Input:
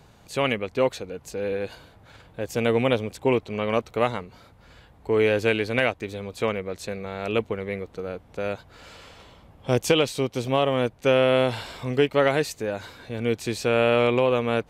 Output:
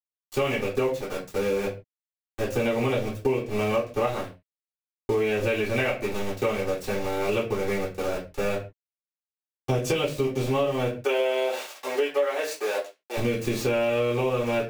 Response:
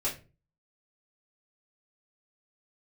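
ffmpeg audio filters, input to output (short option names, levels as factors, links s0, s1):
-filter_complex "[0:a]aeval=exprs='val(0)*gte(abs(val(0)),0.0266)':c=same,asettb=1/sr,asplit=3[s0][s1][s2];[s0]atrim=end=11.024[s3];[s1]atrim=start=11.02:end=13.17,asetpts=PTS-STARTPTS,afade=t=in:d=0.004:c=qsin,afade=t=out:st=2.146:d=0.004:c=qsin,highpass=f=410:w=0.5412,highpass=f=410:w=1.3066[s4];[s2]atrim=start=13.166[s5];[s3][s4]acrossfade=d=0.004:c1=hsin:c2=qsin[s6];[s6][s5]acrossfade=d=0.004:c1=qsin:c2=hsin[s7];[1:a]atrim=start_sample=2205,afade=t=out:st=0.22:d=0.01,atrim=end_sample=10143[s8];[s7][s8]afir=irnorm=-1:irlink=0,acompressor=threshold=0.0794:ratio=6"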